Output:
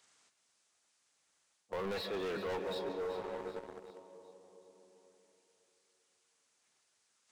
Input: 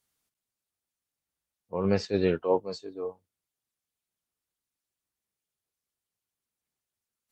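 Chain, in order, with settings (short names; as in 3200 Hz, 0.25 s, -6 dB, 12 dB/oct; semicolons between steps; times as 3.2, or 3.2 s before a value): nonlinear frequency compression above 2700 Hz 1.5:1; HPF 770 Hz 6 dB/oct; digital reverb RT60 3.3 s, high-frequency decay 0.4×, pre-delay 0.105 s, DRR 13.5 dB; sample leveller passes 2; in parallel at -1.5 dB: limiter -24 dBFS, peak gain reduction 7 dB; on the sum: soft clip -27.5 dBFS, distortion -8 dB; reverse; compressor 6:1, threshold -40 dBFS, peak gain reduction 10.5 dB; reverse; thin delay 0.38 s, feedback 35%, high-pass 3300 Hz, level -14 dB; three-band squash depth 40%; gain +3 dB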